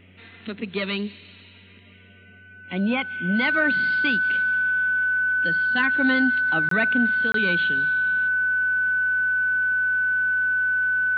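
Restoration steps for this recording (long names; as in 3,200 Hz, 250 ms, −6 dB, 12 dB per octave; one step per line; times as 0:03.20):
hum removal 92.8 Hz, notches 5
notch filter 1,500 Hz, Q 30
repair the gap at 0:06.69/0:07.32, 23 ms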